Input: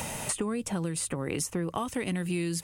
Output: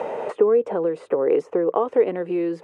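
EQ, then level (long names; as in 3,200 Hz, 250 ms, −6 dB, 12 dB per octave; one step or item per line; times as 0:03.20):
high-pass with resonance 450 Hz, resonance Q 4.4
low-pass filter 1,200 Hz 12 dB per octave
+7.5 dB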